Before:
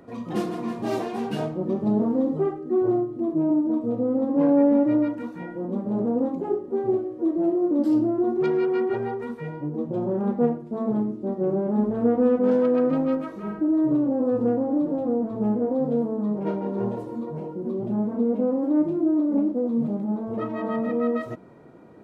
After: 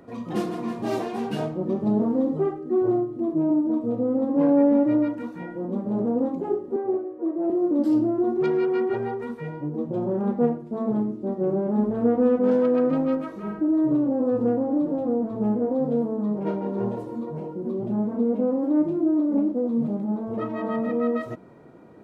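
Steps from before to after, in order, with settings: 6.76–7.50 s: three-band isolator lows -16 dB, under 280 Hz, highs -17 dB, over 2.3 kHz

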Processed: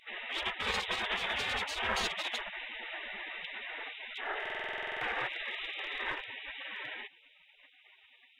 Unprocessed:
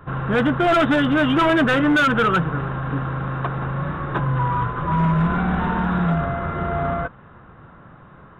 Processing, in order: octave divider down 1 oct, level -5 dB; spectral gate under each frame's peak -30 dB weak; low-pass 3.3 kHz 6 dB/octave; in parallel at 0 dB: compression, threshold -53 dBFS, peak gain reduction 17.5 dB; on the sum: buffer glitch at 4.41 s, samples 2048, times 12; trim +5 dB

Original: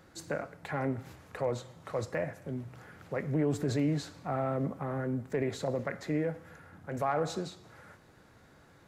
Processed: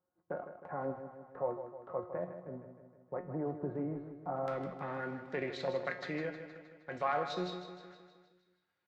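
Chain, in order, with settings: low-pass 1.1 kHz 24 dB/octave, from 4.48 s 4.2 kHz; tilt EQ +3 dB/octave; gate -51 dBFS, range -23 dB; transient shaper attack 0 dB, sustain -8 dB; feedback comb 180 Hz, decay 0.35 s, harmonics all, mix 80%; feedback delay 156 ms, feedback 57%, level -10 dB; trim +9 dB

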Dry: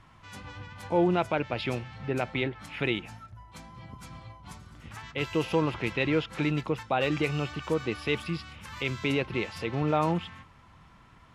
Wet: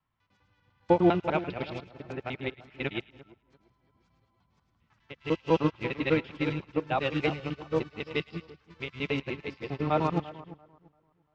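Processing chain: time reversed locally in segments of 100 ms; low-pass 5.7 kHz 24 dB/octave; on a send: two-band feedback delay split 1.5 kHz, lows 342 ms, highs 107 ms, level -7 dB; on the sum: upward expansion 2.5:1, over -41 dBFS; trim +4.5 dB

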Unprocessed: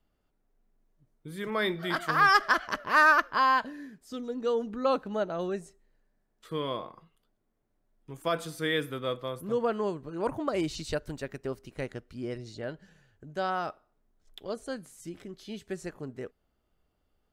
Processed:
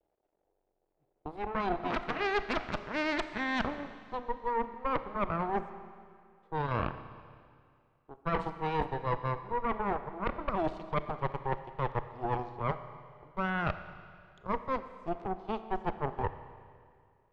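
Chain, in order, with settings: companding laws mixed up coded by A; low-pass 2.5 kHz 12 dB/octave; high-order bell 540 Hz +14.5 dB; reverse; compression 10:1, threshold -31 dBFS, peak gain reduction 21.5 dB; reverse; Chebyshev shaper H 3 -17 dB, 4 -7 dB, 8 -18 dB, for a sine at -19 dBFS; Schroeder reverb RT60 2.2 s, combs from 28 ms, DRR 11 dB

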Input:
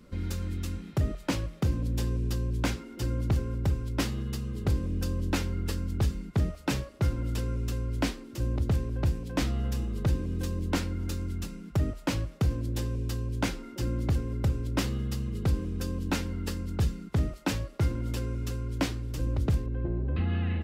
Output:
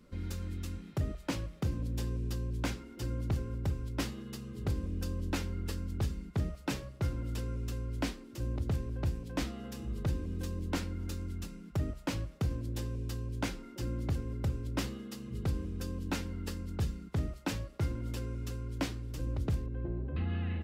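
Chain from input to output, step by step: de-hum 64.87 Hz, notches 3; trim -5.5 dB

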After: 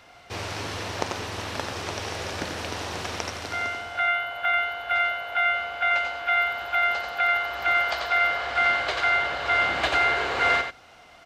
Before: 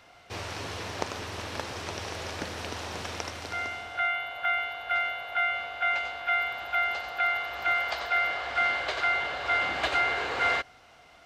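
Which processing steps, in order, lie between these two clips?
delay 89 ms -7.5 dB; trim +3.5 dB

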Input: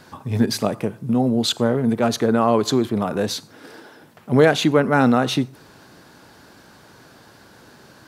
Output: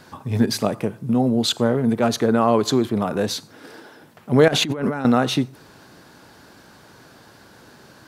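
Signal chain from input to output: 4.48–5.05 s: compressor with a negative ratio -24 dBFS, ratio -1

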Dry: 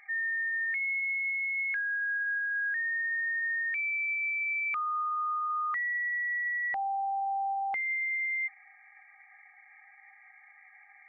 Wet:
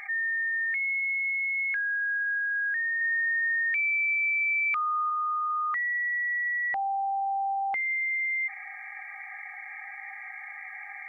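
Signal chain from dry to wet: 3.01–5.10 s: treble shelf 2.3 kHz +9.5 dB; level flattener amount 50%

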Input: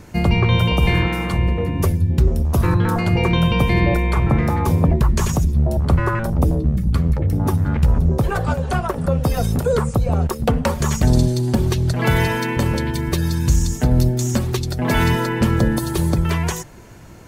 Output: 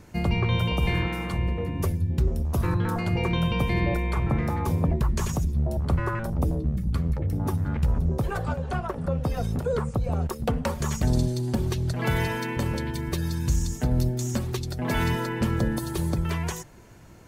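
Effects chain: 8.48–10.04 s: treble shelf 5.8 kHz -9.5 dB; trim -8 dB

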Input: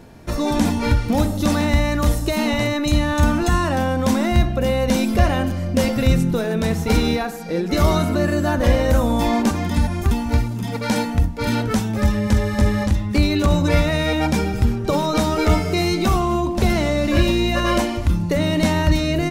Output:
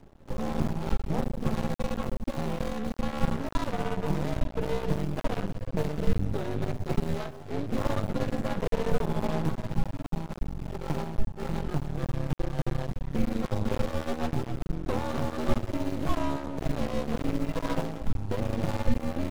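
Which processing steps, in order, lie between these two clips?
median filter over 25 samples; frequency shift -71 Hz; half-wave rectifier; trim -5.5 dB

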